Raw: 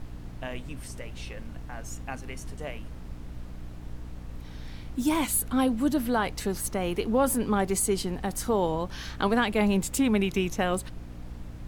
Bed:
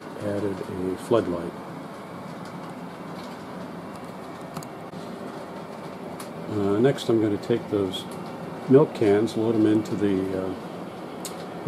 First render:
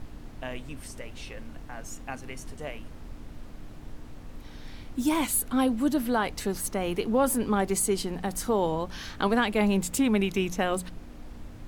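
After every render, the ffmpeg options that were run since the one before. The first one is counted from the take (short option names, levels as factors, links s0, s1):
-af "bandreject=f=60:t=h:w=4,bandreject=f=120:t=h:w=4,bandreject=f=180:t=h:w=4"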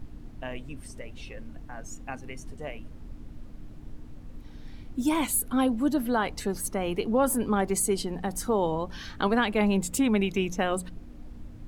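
-af "afftdn=nr=8:nf=-44"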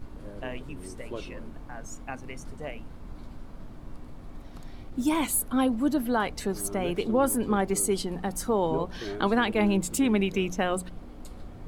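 -filter_complex "[1:a]volume=0.141[s0];[0:a][s0]amix=inputs=2:normalize=0"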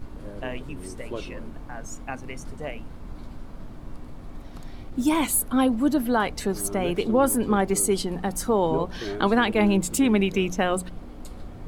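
-af "volume=1.5"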